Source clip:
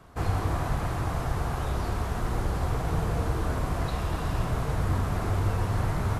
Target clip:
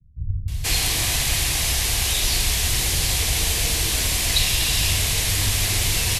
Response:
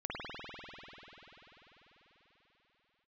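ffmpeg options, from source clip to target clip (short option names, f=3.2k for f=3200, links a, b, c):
-filter_complex "[0:a]lowshelf=f=91:g=7.5,acrossover=split=160[a][b];[b]adelay=480[c];[a][c]amix=inputs=2:normalize=0,acrossover=split=110|1100[d][e][f];[f]aexciter=amount=13.6:drive=7.1:freq=2k[g];[d][e][g]amix=inputs=3:normalize=0,volume=-1.5dB"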